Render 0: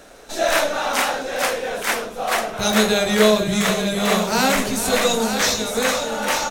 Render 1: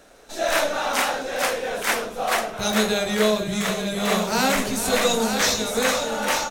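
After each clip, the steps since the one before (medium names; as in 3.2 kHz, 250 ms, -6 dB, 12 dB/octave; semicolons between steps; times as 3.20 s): level rider; trim -6.5 dB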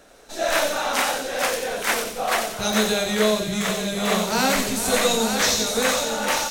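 feedback echo behind a high-pass 91 ms, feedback 51%, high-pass 3.6 kHz, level -3 dB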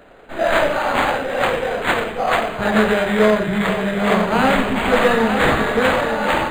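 decimation joined by straight lines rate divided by 8×; trim +6 dB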